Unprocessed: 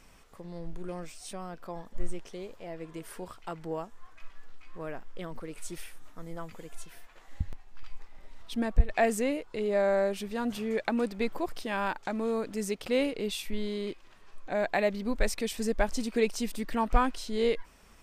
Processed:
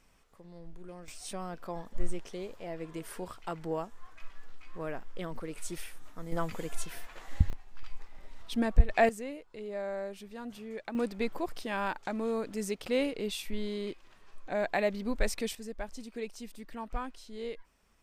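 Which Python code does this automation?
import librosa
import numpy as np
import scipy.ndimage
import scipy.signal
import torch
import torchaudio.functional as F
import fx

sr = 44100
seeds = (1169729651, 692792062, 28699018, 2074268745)

y = fx.gain(x, sr, db=fx.steps((0.0, -8.5), (1.08, 1.0), (6.32, 7.5), (7.5, 1.0), (9.09, -10.5), (10.95, -2.0), (15.55, -12.0)))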